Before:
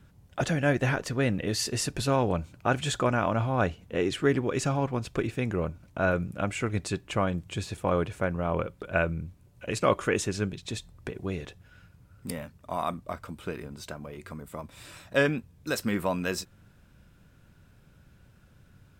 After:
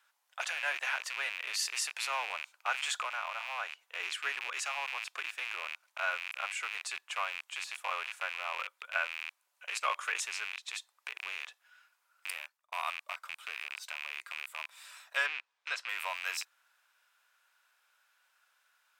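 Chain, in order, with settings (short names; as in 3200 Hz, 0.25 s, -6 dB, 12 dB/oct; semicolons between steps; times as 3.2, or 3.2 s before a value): rattling part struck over -41 dBFS, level -22 dBFS; HPF 910 Hz 24 dB/oct; 3.01–4 compressor 2:1, threshold -33 dBFS, peak gain reduction 5 dB; 12.3–12.72 fade out; 15.26–15.89 LPF 4500 Hz 12 dB/oct; gain -3 dB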